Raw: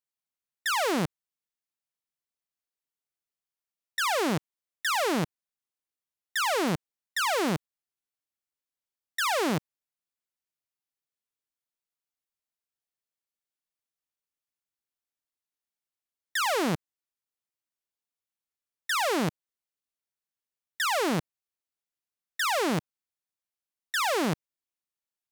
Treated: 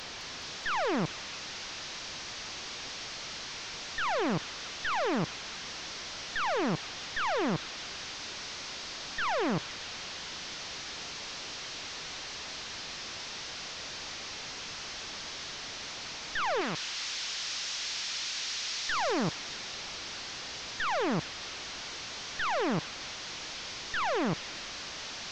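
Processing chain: one-bit delta coder 32 kbps, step -32.5 dBFS; 16.61–18.90 s: tilt shelf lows -7.5 dB, about 1.2 kHz; feedback echo behind a high-pass 211 ms, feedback 70%, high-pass 3.5 kHz, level -3 dB; trim -2.5 dB

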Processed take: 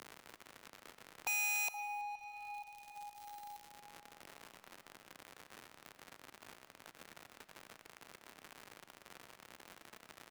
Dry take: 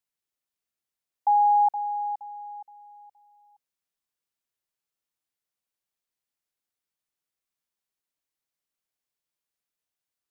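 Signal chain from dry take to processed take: companding laws mixed up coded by A; high-pass 800 Hz 6 dB/octave; gate -56 dBFS, range -10 dB; upward compressor, threshold -40 dBFS; crackle 120 per s -48 dBFS; integer overflow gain 21 dB; delay 328 ms -23.5 dB; on a send at -12 dB: reverberation RT60 2.9 s, pre-delay 60 ms; on the sum: three bands compressed up and down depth 100%; trim +7 dB

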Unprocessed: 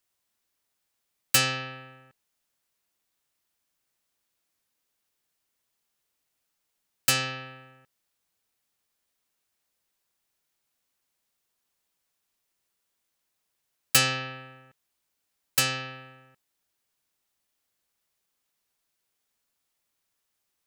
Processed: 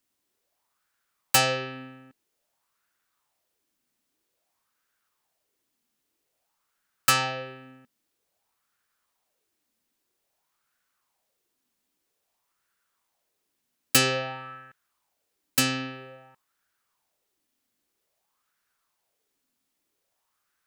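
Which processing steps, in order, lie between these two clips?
sweeping bell 0.51 Hz 240–1500 Hz +14 dB

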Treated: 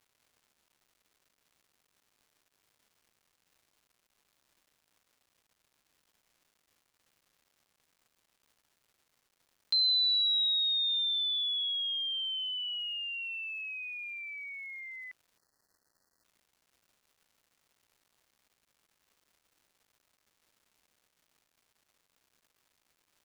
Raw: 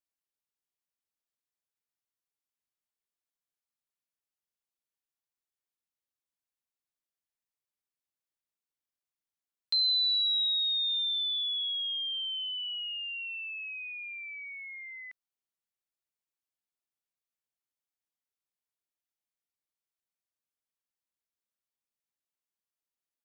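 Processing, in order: crackle 430 per s -58 dBFS; spectral selection erased 15.38–16.24 s, 2–4.1 kHz

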